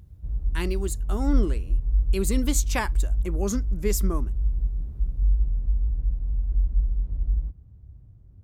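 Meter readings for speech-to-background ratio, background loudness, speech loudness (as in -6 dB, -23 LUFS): -2.0 dB, -28.0 LUFS, -30.0 LUFS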